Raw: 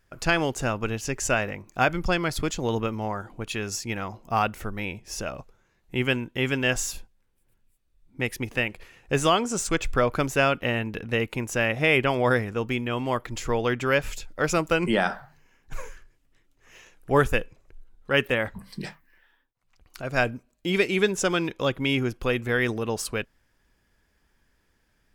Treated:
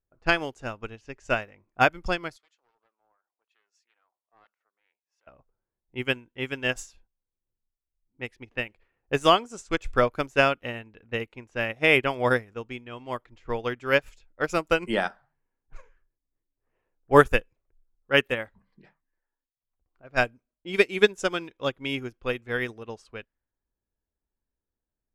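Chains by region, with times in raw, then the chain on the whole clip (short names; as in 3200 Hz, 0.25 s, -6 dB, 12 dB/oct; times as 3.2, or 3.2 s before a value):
2.36–5.27 HPF 510 Hz + differentiator + Doppler distortion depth 0.61 ms
whole clip: low-pass opened by the level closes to 830 Hz, open at -21 dBFS; bell 160 Hz -4.5 dB 0.9 oct; upward expander 2.5:1, over -33 dBFS; gain +6.5 dB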